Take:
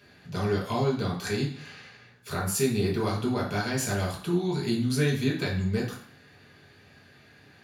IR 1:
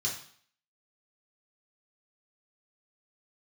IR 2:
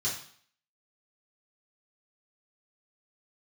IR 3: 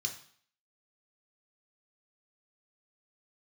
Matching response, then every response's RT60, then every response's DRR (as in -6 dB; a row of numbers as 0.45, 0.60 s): 1; 0.55, 0.55, 0.55 s; -4.0, -8.5, 2.5 dB